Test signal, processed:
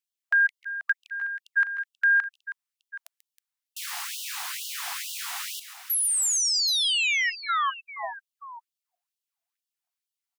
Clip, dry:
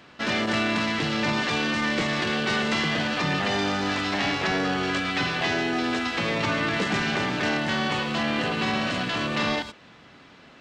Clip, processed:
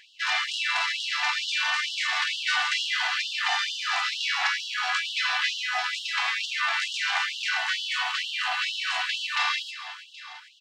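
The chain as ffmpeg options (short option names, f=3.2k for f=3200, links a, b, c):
-filter_complex "[0:a]asplit=2[a][b];[b]aecho=0:1:139|140|319|774:0.2|0.106|0.224|0.158[c];[a][c]amix=inputs=2:normalize=0,afftfilt=real='re*gte(b*sr/1024,660*pow(2800/660,0.5+0.5*sin(2*PI*2.2*pts/sr)))':imag='im*gte(b*sr/1024,660*pow(2800/660,0.5+0.5*sin(2*PI*2.2*pts/sr)))':win_size=1024:overlap=0.75,volume=2dB"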